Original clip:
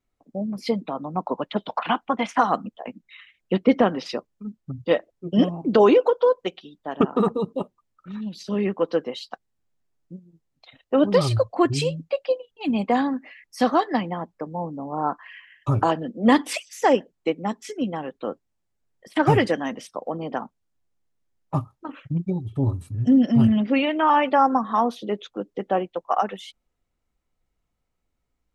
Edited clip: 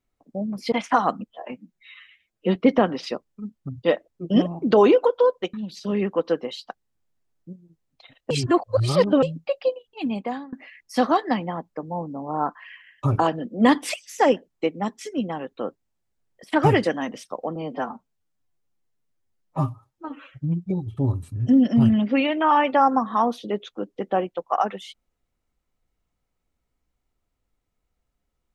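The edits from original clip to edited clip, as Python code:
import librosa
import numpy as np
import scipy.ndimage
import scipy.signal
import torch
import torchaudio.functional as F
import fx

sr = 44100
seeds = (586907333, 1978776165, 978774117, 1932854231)

y = fx.edit(x, sr, fx.cut(start_s=0.72, length_s=1.45),
    fx.stretch_span(start_s=2.73, length_s=0.85, factor=1.5),
    fx.cut(start_s=6.56, length_s=1.61),
    fx.reverse_span(start_s=10.94, length_s=0.92),
    fx.fade_out_to(start_s=12.51, length_s=0.65, floor_db=-23.5),
    fx.stretch_span(start_s=20.19, length_s=2.1, factor=1.5), tone=tone)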